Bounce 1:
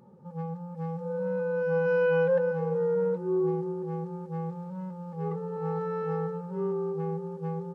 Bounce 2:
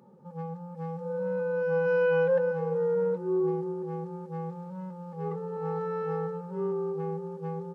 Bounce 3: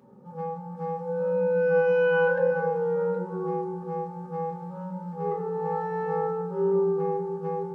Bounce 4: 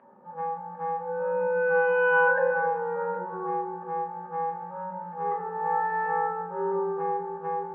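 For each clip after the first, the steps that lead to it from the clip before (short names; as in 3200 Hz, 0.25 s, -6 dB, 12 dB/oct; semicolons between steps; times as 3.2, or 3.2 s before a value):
HPF 160 Hz
reverb RT60 1.1 s, pre-delay 6 ms, DRR -1.5 dB
speaker cabinet 320–2700 Hz, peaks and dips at 440 Hz -8 dB, 640 Hz +9 dB, 990 Hz +9 dB, 1700 Hz +10 dB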